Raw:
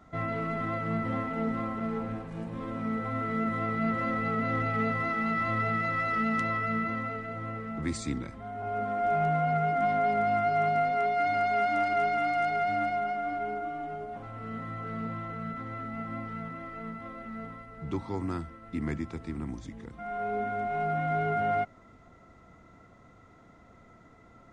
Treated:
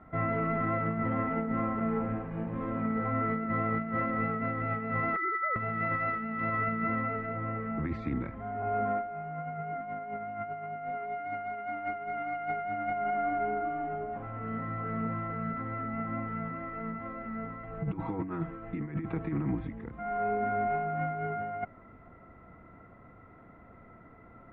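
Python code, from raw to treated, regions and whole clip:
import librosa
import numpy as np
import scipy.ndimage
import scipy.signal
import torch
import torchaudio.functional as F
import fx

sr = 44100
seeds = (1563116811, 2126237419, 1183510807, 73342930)

y = fx.chain(x, sr, fx.sine_speech(),
    fx.quant_float(bits=6),
    fx.over_compress(threshold_db=-29.0, ratio=-0.5), at=(5.16, 5.56))
y = fx.chain(y, sr, fx.steep_lowpass(hz=4200.0, slope=36),
    fx.comb(ms=6.3, depth=0.91),
    fx.over_compress(threshold_db=-34.0, ratio=-0.5), at=(17.63, 19.68))
y = scipy.signal.sosfilt(scipy.signal.butter(4, 2300.0, 'lowpass', fs=sr, output='sos'), y)
y = fx.over_compress(y, sr, threshold_db=-31.0, ratio=-0.5)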